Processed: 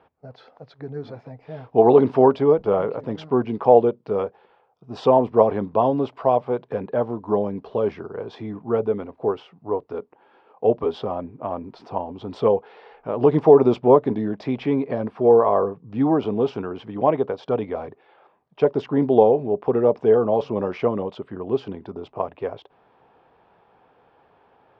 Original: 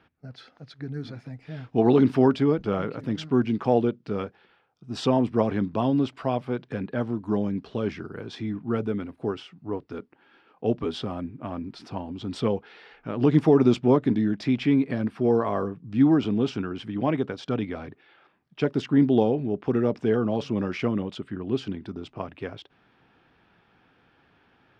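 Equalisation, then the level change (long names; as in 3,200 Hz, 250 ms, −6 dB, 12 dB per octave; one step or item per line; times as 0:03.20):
high-frequency loss of the air 120 metres
flat-topped bell 670 Hz +12 dB
−2.0 dB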